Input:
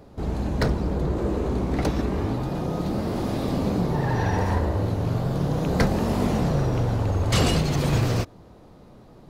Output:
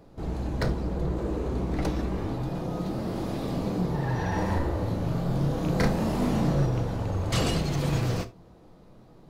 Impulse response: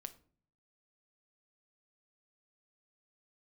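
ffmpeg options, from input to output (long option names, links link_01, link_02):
-filter_complex "[0:a]asettb=1/sr,asplit=3[link_01][link_02][link_03];[link_01]atrim=end=4.284[link_04];[link_02]atrim=start=4.28:end=6.66,asetpts=PTS-STARTPTS,afade=type=in:duration=0.004:curve=qsin,afade=type=out:start_time=2.376:duration=0.004:curve=qsin,asplit=2[link_05][link_06];[link_06]adelay=36,volume=-3dB[link_07];[link_05][link_07]amix=inputs=2:normalize=0,atrim=end_sample=104958[link_08];[link_03]atrim=start=6.656[link_09];[link_04][link_08]acrossfade=duration=0.004:curve1=hsin:curve2=qsin[link_10];[link_10][link_09]acrossfade=duration=0.004:curve1=qsin:curve2=hsin[link_11];[1:a]atrim=start_sample=2205,atrim=end_sample=3969[link_12];[link_11][link_12]afir=irnorm=-1:irlink=0"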